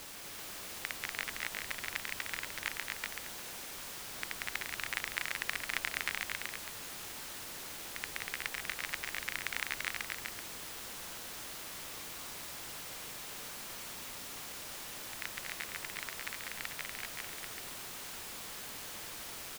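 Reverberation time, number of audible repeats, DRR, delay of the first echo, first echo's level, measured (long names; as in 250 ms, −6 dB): no reverb audible, 2, no reverb audible, 241 ms, −3.5 dB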